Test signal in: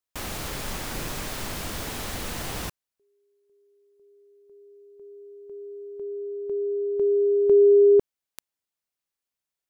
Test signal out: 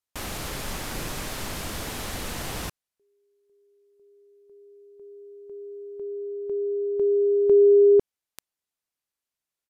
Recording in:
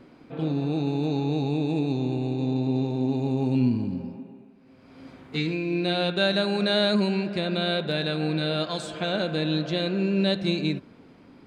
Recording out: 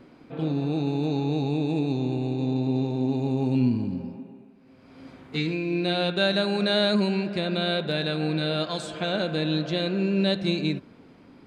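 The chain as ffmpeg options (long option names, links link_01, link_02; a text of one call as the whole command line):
ffmpeg -i in.wav -af "aresample=32000,aresample=44100" out.wav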